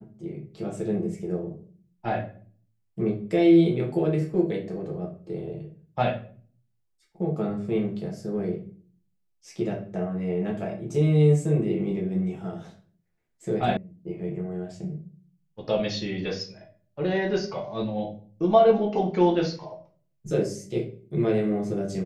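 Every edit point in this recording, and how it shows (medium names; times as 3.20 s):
13.77 s: sound stops dead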